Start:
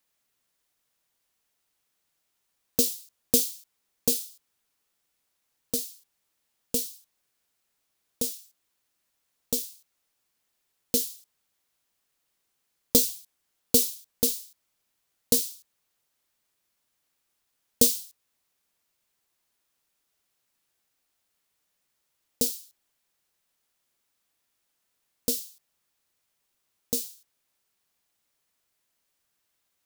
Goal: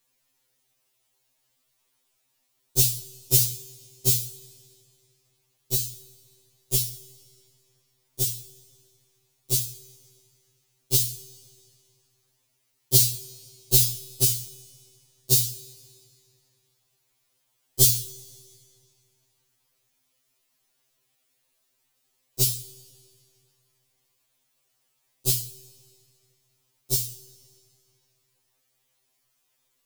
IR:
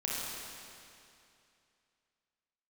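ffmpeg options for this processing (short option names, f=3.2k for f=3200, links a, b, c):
-filter_complex "[0:a]equalizer=f=1.6k:w=2.2:g=-5,bandreject=f=50:t=h:w=6,bandreject=f=100:t=h:w=6,bandreject=f=150:t=h:w=6,bandreject=f=200:t=h:w=6,bandreject=f=250:t=h:w=6,bandreject=f=300:t=h:w=6,asplit=2[a][b];[b]alimiter=limit=-11.5dB:level=0:latency=1:release=18,volume=-1dB[c];[a][c]amix=inputs=2:normalize=0,afreqshift=-130,asplit=2[d][e];[1:a]atrim=start_sample=2205[f];[e][f]afir=irnorm=-1:irlink=0,volume=-21dB[g];[d][g]amix=inputs=2:normalize=0,afftfilt=real='re*2.45*eq(mod(b,6),0)':imag='im*2.45*eq(mod(b,6),0)':win_size=2048:overlap=0.75,volume=1dB"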